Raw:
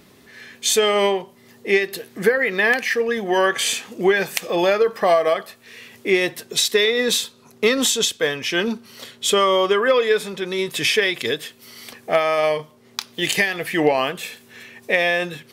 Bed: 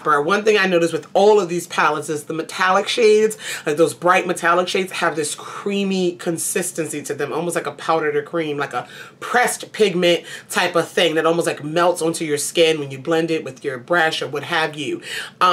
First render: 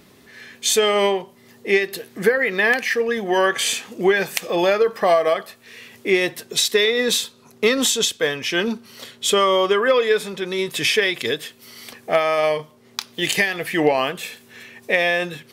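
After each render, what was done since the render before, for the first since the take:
no processing that can be heard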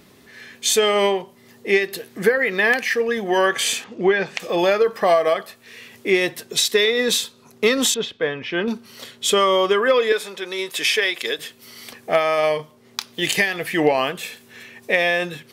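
0:03.84–0:04.40: high-frequency loss of the air 150 metres
0:07.94–0:08.68: high-frequency loss of the air 340 metres
0:10.12–0:11.39: Bessel high-pass filter 460 Hz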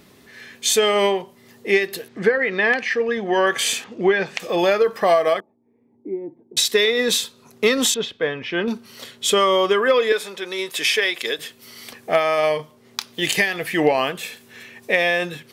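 0:02.08–0:03.47: high-frequency loss of the air 110 metres
0:05.40–0:06.57: formant resonators in series u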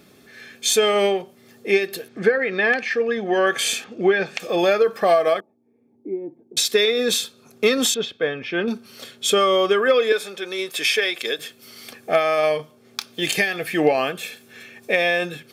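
notch comb filter 990 Hz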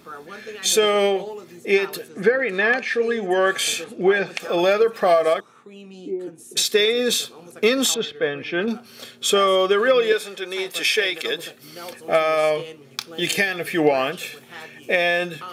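mix in bed −21.5 dB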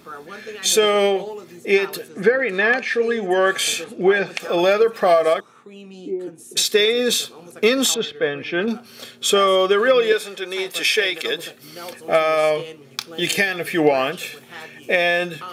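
level +1.5 dB

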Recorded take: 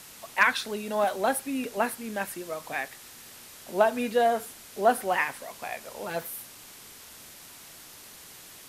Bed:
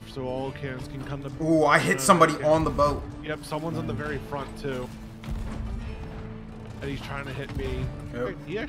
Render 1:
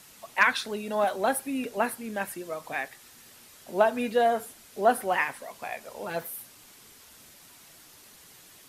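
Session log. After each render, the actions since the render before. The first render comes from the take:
broadband denoise 6 dB, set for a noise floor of −48 dBFS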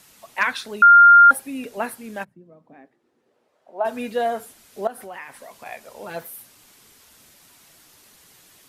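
0:00.82–0:01.31: beep over 1,400 Hz −6 dBFS
0:02.23–0:03.84: resonant band-pass 140 Hz → 810 Hz, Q 2.2
0:04.87–0:05.66: downward compressor 3 to 1, threshold −36 dBFS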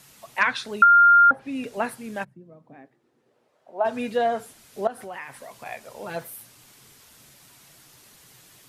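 treble cut that deepens with the level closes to 1,200 Hz, closed at −10 dBFS
parametric band 130 Hz +10 dB 0.4 octaves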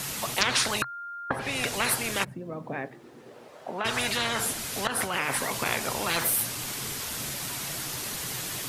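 every bin compressed towards the loudest bin 10 to 1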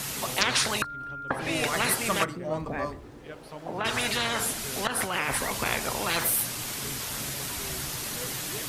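mix in bed −12 dB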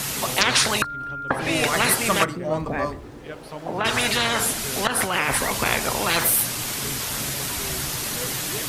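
level +6 dB
brickwall limiter −2 dBFS, peak gain reduction 2 dB

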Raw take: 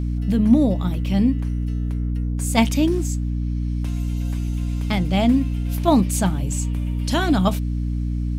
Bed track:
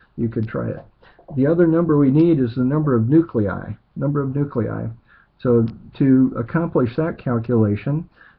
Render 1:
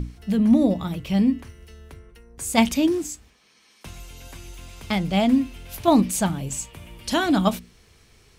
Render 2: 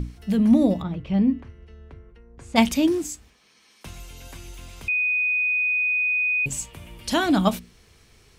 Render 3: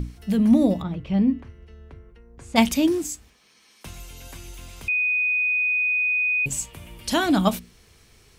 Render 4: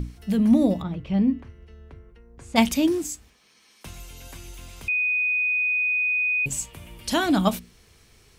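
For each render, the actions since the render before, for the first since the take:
mains-hum notches 60/120/180/240/300 Hz
0:00.82–0:02.56: head-to-tape spacing loss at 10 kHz 28 dB; 0:04.88–0:06.46: beep over 2,490 Hz −19.5 dBFS
high-shelf EQ 8,700 Hz +5 dB
level −1 dB

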